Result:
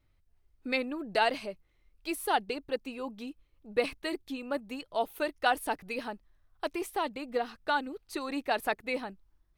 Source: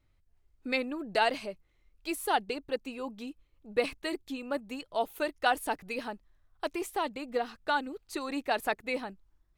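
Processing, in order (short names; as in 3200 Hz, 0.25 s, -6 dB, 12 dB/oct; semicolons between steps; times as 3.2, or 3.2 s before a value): bell 7200 Hz -5.5 dB 0.28 oct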